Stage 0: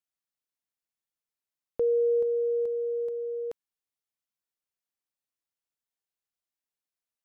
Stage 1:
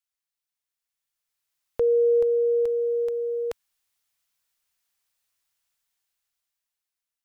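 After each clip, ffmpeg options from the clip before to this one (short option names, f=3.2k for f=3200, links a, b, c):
-af "equalizer=f=290:w=0.52:g=-13,dynaudnorm=f=320:g=9:m=12dB,volume=3dB"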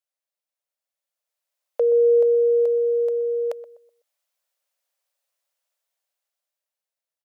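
-filter_complex "[0:a]highpass=f=570:t=q:w=4.9,asplit=2[a][b];[b]adelay=125,lowpass=f=830:p=1,volume=-13.5dB,asplit=2[c][d];[d]adelay=125,lowpass=f=830:p=1,volume=0.39,asplit=2[e][f];[f]adelay=125,lowpass=f=830:p=1,volume=0.39,asplit=2[g][h];[h]adelay=125,lowpass=f=830:p=1,volume=0.39[i];[c][e][g][i]amix=inputs=4:normalize=0[j];[a][j]amix=inputs=2:normalize=0,volume=-3.5dB"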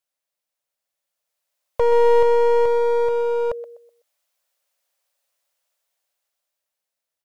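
-af "aeval=exprs='clip(val(0),-1,0.0355)':c=same,volume=5dB"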